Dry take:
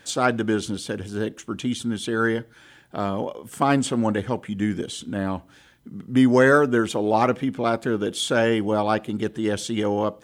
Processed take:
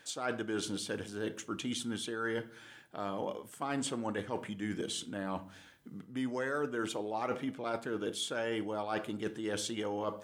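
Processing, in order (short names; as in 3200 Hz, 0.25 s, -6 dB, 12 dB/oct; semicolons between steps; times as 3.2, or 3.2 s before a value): low shelf 230 Hz -10 dB; shoebox room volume 600 m³, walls furnished, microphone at 0.49 m; reverse; compressor 6:1, threshold -29 dBFS, peak gain reduction 15 dB; reverse; gain -3.5 dB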